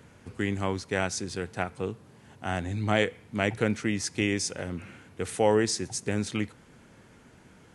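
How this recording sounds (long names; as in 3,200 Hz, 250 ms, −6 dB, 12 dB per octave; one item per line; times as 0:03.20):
background noise floor −55 dBFS
spectral slope −4.5 dB per octave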